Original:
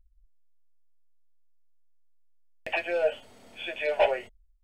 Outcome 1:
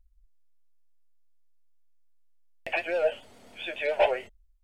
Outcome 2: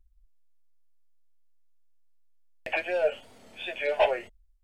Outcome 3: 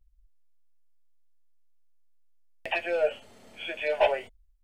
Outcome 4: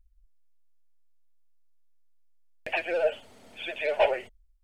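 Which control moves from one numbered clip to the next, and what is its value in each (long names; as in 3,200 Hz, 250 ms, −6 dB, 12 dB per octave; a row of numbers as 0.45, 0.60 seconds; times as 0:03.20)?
pitch vibrato, speed: 7.2, 2.8, 0.52, 16 Hertz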